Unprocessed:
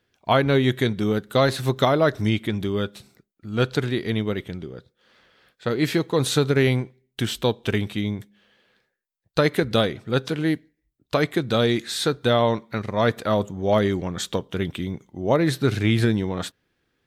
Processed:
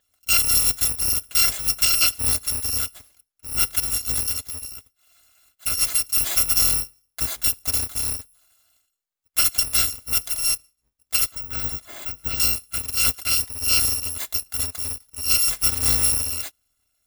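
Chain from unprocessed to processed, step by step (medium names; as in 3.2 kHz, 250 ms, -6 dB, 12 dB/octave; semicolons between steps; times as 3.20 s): bit-reversed sample order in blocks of 256 samples; 11.31–12.40 s: de-esser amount 95%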